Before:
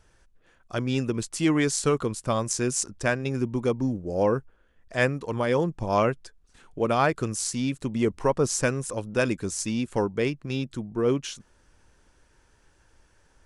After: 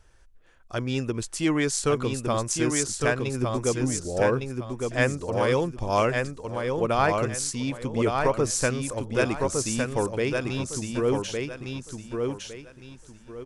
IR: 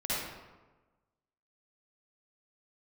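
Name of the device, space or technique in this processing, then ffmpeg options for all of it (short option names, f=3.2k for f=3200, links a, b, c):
low shelf boost with a cut just above: -filter_complex "[0:a]lowshelf=f=71:g=5.5,equalizer=f=190:t=o:w=1.2:g=-4.5,aecho=1:1:1159|2318|3477|4636:0.631|0.177|0.0495|0.0139,asettb=1/sr,asplit=3[a][b][c];[a]atrim=end=5.304[d];[b]atrim=start=5.3:end=6.1,asetpts=PTS-STARTPTS,afade=t=in:d=0.004:c=qsin,afade=t=out:st=0.796:d=0.004:c=qsin,adynamicequalizer=threshold=0.0112:dfrequency=2300:dqfactor=0.7:tfrequency=2300:tqfactor=0.7:attack=5:release=100:ratio=0.375:range=2.5:mode=boostabove:tftype=highshelf[e];[c]atrim=start=6.096[f];[d][e]acrossfade=d=0.004:c1=hsin:c2=qsin[g];[g][f]acrossfade=d=0.004:c1=qsin:c2=hsin"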